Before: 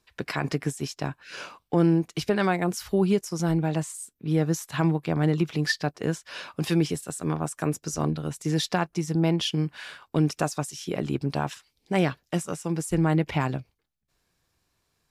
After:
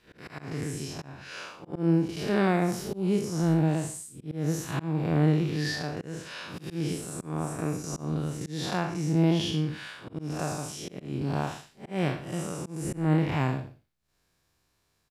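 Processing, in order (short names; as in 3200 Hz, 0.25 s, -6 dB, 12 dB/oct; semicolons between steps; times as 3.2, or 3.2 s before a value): time blur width 0.157 s; echo 0.119 s -17.5 dB; auto swell 0.213 s; gain +2 dB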